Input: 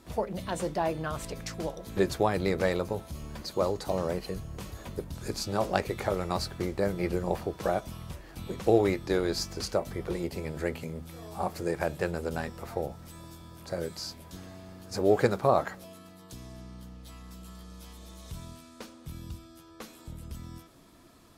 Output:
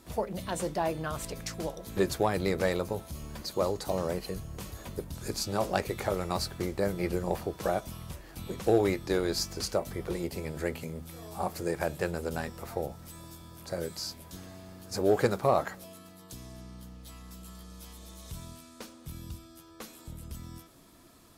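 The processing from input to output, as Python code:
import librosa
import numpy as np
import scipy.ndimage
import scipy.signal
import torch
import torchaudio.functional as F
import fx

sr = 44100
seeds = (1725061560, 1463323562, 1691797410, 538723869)

p1 = fx.high_shelf(x, sr, hz=7000.0, db=7.0)
p2 = np.clip(10.0 ** (16.5 / 20.0) * p1, -1.0, 1.0) / 10.0 ** (16.5 / 20.0)
p3 = p1 + (p2 * librosa.db_to_amplitude(-3.5))
y = p3 * librosa.db_to_amplitude(-5.5)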